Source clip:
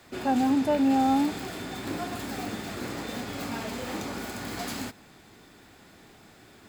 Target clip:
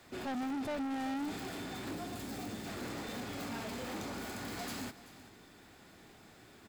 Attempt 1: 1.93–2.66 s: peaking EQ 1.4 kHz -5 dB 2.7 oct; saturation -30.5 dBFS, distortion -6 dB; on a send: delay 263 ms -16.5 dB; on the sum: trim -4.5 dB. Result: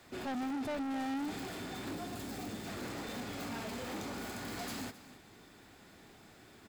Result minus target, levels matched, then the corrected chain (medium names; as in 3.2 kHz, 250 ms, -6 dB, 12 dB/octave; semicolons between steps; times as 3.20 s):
echo 119 ms early
1.93–2.66 s: peaking EQ 1.4 kHz -5 dB 2.7 oct; saturation -30.5 dBFS, distortion -6 dB; on a send: delay 382 ms -16.5 dB; on the sum: trim -4.5 dB